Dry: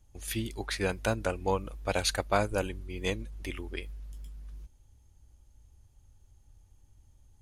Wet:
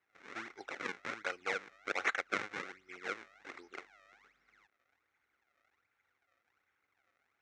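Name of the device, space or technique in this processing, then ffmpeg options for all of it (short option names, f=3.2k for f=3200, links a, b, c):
circuit-bent sampling toy: -af "acrusher=samples=40:mix=1:aa=0.000001:lfo=1:lforange=64:lforate=1.3,highpass=580,equalizer=f=620:t=q:w=4:g=-7,equalizer=f=950:t=q:w=4:g=-8,equalizer=f=1.4k:t=q:w=4:g=7,equalizer=f=2.1k:t=q:w=4:g=9,equalizer=f=3.1k:t=q:w=4:g=-5,equalizer=f=4.7k:t=q:w=4:g=-8,lowpass=f=5.8k:w=0.5412,lowpass=f=5.8k:w=1.3066,volume=-4dB"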